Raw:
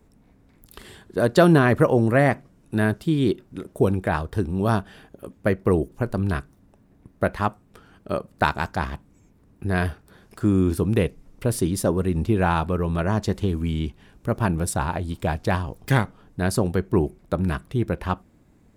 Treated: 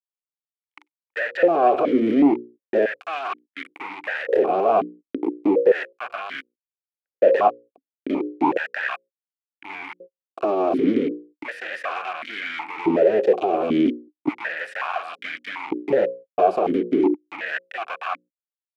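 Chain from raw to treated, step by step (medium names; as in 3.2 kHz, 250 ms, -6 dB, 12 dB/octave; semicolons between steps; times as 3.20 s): fuzz box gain 34 dB, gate -35 dBFS; reverse; upward compressor, threshold -32 dBFS; reverse; hum notches 60/120/180/240/300/360/420/480/540 Hz; LFO high-pass square 0.35 Hz 390–1600 Hz; tilt EQ -2 dB/octave; gate -40 dBFS, range -39 dB; de-esser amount 70%; loudness maximiser +10 dB; stepped vowel filter 2.7 Hz; trim +2 dB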